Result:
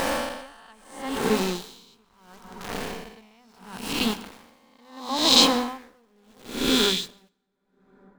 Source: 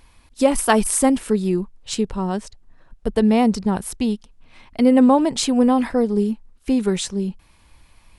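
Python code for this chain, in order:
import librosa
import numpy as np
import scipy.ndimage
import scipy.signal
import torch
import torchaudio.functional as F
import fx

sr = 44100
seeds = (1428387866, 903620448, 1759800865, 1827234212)

y = fx.spec_swells(x, sr, rise_s=2.14)
y = scipy.signal.sosfilt(scipy.signal.butter(2, 5400.0, 'lowpass', fs=sr, output='sos'), y)
y = fx.low_shelf_res(y, sr, hz=790.0, db=-6.0, q=1.5)
y = fx.hum_notches(y, sr, base_hz=50, count=5)
y = fx.dynamic_eq(y, sr, hz=3800.0, q=1.8, threshold_db=-38.0, ratio=4.0, max_db=6)
y = np.where(np.abs(y) >= 10.0 ** (-26.5 / 20.0), y, 0.0)
y = fx.rev_plate(y, sr, seeds[0], rt60_s=2.6, hf_ratio=0.4, predelay_ms=105, drr_db=11.5)
y = y * 10.0 ** (-39 * (0.5 - 0.5 * np.cos(2.0 * np.pi * 0.74 * np.arange(len(y)) / sr)) / 20.0)
y = y * librosa.db_to_amplitude(2.0)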